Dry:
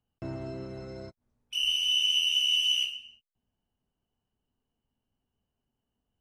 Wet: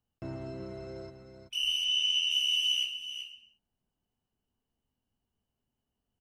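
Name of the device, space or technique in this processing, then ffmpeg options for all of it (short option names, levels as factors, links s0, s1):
ducked delay: -filter_complex "[0:a]asettb=1/sr,asplit=3[s0][s1][s2];[s0]atrim=end=1.844[s3];[s1]atrim=start=1.84:end=2.31,asetpts=PTS-STARTPTS,afade=t=in:d=0.004:c=qsin,afade=t=out:st=0.466:d=0.004:c=qsin,lowpass=6800[s4];[s2]atrim=start=2.306[s5];[s3][s4]acrossfade=d=0.004:c1=hsin:c2=qsin[s6];[s6][s5]acrossfade=d=0.004:c1=qsin:c2=hsin,asplit=3[s7][s8][s9];[s8]adelay=380,volume=0.422[s10];[s9]apad=whole_len=290555[s11];[s10][s11]sidechaincompress=threshold=0.0224:ratio=8:attack=5.7:release=552[s12];[s7][s12]amix=inputs=2:normalize=0,volume=0.75"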